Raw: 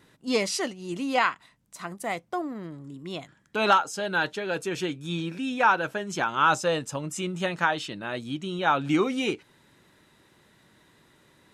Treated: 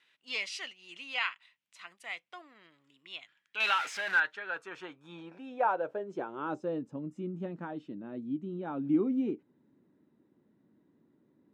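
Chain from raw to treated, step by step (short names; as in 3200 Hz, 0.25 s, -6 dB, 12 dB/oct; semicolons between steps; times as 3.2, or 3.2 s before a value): 3.6–4.2 zero-crossing step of -23.5 dBFS; band-pass sweep 2700 Hz -> 260 Hz, 3.57–6.87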